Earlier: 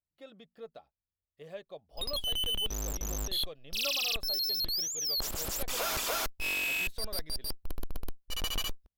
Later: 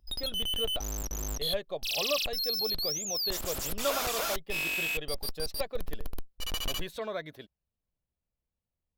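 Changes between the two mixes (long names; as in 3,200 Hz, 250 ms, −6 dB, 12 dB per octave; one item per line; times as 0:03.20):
speech +9.5 dB
background: entry −1.90 s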